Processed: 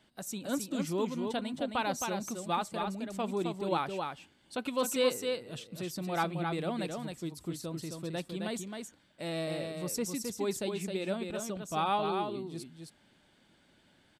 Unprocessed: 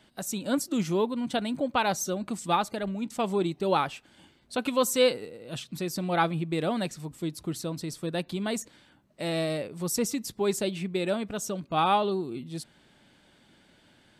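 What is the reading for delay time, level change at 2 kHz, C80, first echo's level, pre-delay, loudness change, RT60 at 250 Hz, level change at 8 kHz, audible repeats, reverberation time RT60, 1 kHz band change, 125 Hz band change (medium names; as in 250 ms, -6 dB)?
265 ms, -5.5 dB, no reverb, -5.0 dB, no reverb, -5.5 dB, no reverb, -5.5 dB, 1, no reverb, -5.5 dB, -5.5 dB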